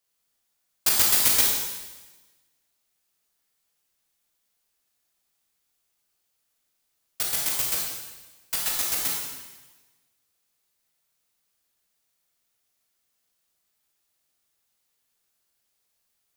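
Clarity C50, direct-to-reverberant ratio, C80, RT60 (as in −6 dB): 1.0 dB, −3.0 dB, 3.0 dB, 1.2 s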